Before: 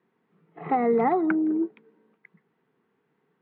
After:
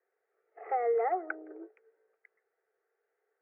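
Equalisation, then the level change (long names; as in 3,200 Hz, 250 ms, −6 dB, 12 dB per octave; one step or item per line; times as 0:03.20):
inverse Chebyshev high-pass filter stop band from 200 Hz, stop band 40 dB
low-pass filter 1,800 Hz 12 dB per octave
phaser with its sweep stopped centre 1,000 Hz, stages 6
−3.0 dB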